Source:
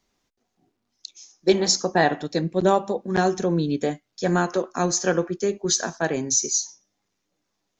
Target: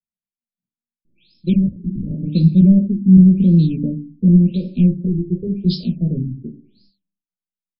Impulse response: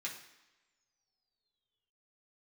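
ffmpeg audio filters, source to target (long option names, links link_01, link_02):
-filter_complex "[0:a]acrossover=split=290|2900[link_01][link_02][link_03];[link_02]asoftclip=type=tanh:threshold=-20.5dB[link_04];[link_01][link_04][link_03]amix=inputs=3:normalize=0,asettb=1/sr,asplit=3[link_05][link_06][link_07];[link_05]atrim=end=5.064[link_08];[link_06]atrim=start=5.06:end=5.47,asetpts=PTS-STARTPTS,afade=type=in:duration=0.004:curve=qsin,afade=type=out:start_time=0.406:duration=0.004:curve=qsin,aecho=1:1:2.2:0.95,atrim=end_sample=18081[link_09];[link_07]atrim=start=5.466[link_10];[link_08][link_09]acrossfade=duration=0.004:curve1=hsin:curve2=qsin[link_11];[link_11][link_10]acrossfade=duration=0.004:curve1=qsin:curve2=hsin,acompressor=threshold=-28dB:ratio=2,aecho=1:1:17|51:0.531|0.188,agate=range=-43dB:threshold=-58dB:ratio=16:detection=peak,asplit=2[link_12][link_13];[1:a]atrim=start_sample=2205,afade=type=out:start_time=0.43:duration=0.01,atrim=end_sample=19404[link_14];[link_13][link_14]afir=irnorm=-1:irlink=0,volume=-1.5dB[link_15];[link_12][link_15]amix=inputs=2:normalize=0,asubboost=boost=4.5:cutoff=57,asettb=1/sr,asplit=3[link_16][link_17][link_18];[link_16]atrim=end=1.534[link_19];[link_17]atrim=start=1.53:end=2.27,asetpts=PTS-STARTPTS,afade=type=in:duration=0.004:curve=qsin,afade=type=out:start_time=0.736:duration=0.004:curve=qsin,aeval=exprs='0.0501*(abs(mod(val(0)/0.0501+3,4)-2)-1)':channel_layout=same[link_20];[link_18]atrim=start=2.266[link_21];[link_19][link_20]acrossfade=duration=0.004:curve1=hsin:curve2=qsin[link_22];[link_22][link_21]acrossfade=duration=0.004:curve1=qsin:curve2=hsin,asuperstop=centerf=1200:order=20:qfactor=0.65,lowshelf=frequency=290:width_type=q:width=3:gain=13.5,afftfilt=real='re*lt(b*sr/1024,360*pow(5400/360,0.5+0.5*sin(2*PI*0.91*pts/sr)))':imag='im*lt(b*sr/1024,360*pow(5400/360,0.5+0.5*sin(2*PI*0.91*pts/sr)))':win_size=1024:overlap=0.75"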